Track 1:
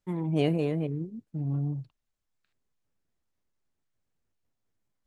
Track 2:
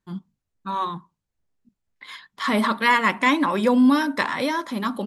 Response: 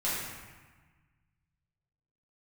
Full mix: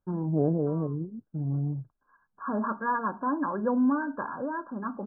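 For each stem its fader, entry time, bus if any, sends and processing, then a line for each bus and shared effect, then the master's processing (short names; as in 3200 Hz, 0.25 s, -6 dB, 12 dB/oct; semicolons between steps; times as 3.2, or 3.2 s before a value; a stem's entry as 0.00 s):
+0.5 dB, 0.00 s, no send, treble ducked by the level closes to 1000 Hz, closed at -26.5 dBFS
-8.0 dB, 0.00 s, no send, auto duck -17 dB, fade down 0.95 s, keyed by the first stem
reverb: off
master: brick-wall FIR low-pass 1700 Hz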